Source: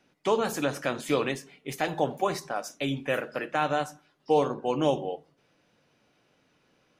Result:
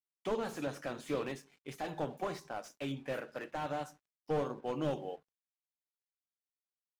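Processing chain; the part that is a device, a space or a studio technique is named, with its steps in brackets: early transistor amplifier (crossover distortion -56.5 dBFS; slew-rate limiter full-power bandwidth 50 Hz); trim -8.5 dB

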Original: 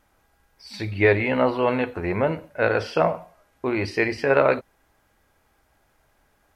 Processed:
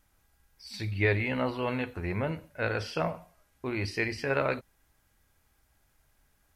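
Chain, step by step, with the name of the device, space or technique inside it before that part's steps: smiley-face EQ (bass shelf 190 Hz +5 dB; peaking EQ 570 Hz -6.5 dB 2.6 oct; treble shelf 5.1 kHz +6.5 dB); trim -5.5 dB

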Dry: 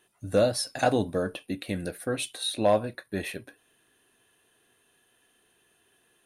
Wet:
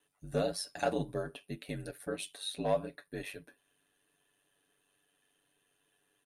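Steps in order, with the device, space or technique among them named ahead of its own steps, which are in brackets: ring-modulated robot voice (ring modulator 48 Hz; comb 7 ms); trim -7.5 dB

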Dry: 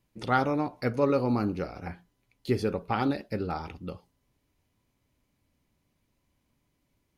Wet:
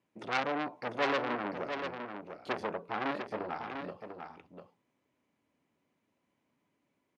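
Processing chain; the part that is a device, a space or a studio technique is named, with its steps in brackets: peaking EQ 4.6 kHz -9 dB 1.1 oct; public-address speaker with an overloaded transformer (transformer saturation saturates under 3.2 kHz; band-pass 230–5800 Hz); delay 697 ms -7 dB

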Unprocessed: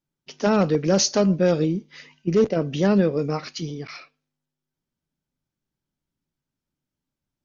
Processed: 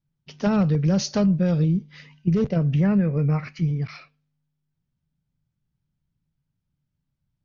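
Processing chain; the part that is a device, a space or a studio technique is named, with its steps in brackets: jukebox (low-pass 5.1 kHz 12 dB/octave; resonant low shelf 210 Hz +11.5 dB, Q 1.5; compression 5:1, threshold -15 dBFS, peak gain reduction 7.5 dB); 2.74–3.82 s: resonant high shelf 2.8 kHz -7 dB, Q 3; trim -2 dB

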